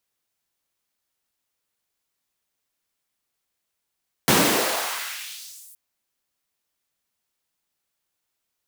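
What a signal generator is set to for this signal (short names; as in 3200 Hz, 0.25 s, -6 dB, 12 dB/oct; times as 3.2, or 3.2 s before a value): swept filtered noise pink, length 1.47 s highpass, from 160 Hz, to 11000 Hz, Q 1.4, exponential, gain ramp -26.5 dB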